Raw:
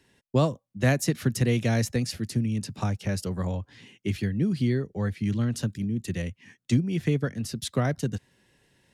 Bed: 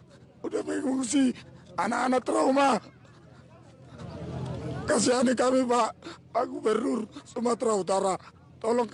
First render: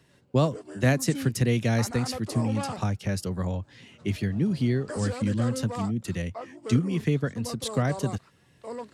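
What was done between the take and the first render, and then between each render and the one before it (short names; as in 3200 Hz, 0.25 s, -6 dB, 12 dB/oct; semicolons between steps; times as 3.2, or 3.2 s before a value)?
add bed -11.5 dB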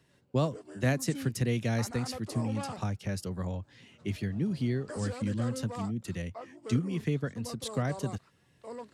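gain -5.5 dB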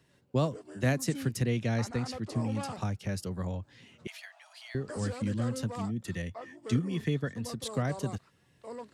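1.44–2.41 air absorption 51 m; 4.07–4.75 steep high-pass 640 Hz 96 dB/oct; 5.86–7.63 small resonant body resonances 1800/3400 Hz, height 11 dB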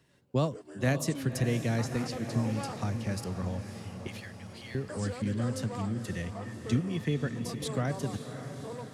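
diffused feedback echo 0.563 s, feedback 59%, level -9.5 dB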